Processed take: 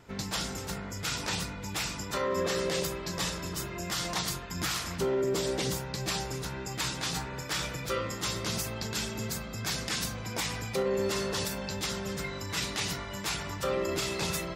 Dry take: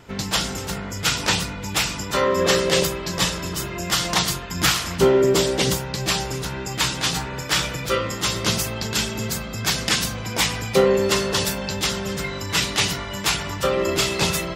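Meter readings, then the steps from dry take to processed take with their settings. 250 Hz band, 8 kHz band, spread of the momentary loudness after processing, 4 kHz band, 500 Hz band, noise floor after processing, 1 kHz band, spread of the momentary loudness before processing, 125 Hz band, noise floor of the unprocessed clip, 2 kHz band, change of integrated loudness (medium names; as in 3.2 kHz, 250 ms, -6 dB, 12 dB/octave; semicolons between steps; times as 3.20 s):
-9.5 dB, -10.0 dB, 5 LU, -11.5 dB, -10.5 dB, -39 dBFS, -10.0 dB, 8 LU, -9.0 dB, -31 dBFS, -11.0 dB, -10.5 dB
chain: peaking EQ 3 kHz -3.5 dB 0.36 oct; peak limiter -13 dBFS, peak gain reduction 7.5 dB; trim -8 dB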